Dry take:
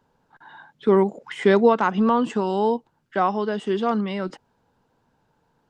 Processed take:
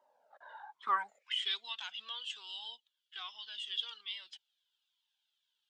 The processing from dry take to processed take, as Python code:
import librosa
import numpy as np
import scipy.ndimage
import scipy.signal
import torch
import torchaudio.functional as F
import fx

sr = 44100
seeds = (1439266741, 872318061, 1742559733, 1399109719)

y = fx.filter_sweep_highpass(x, sr, from_hz=600.0, to_hz=3300.0, start_s=0.53, end_s=1.41, q=8.0)
y = fx.comb_cascade(y, sr, direction='falling', hz=1.2)
y = y * 10.0 ** (-6.0 / 20.0)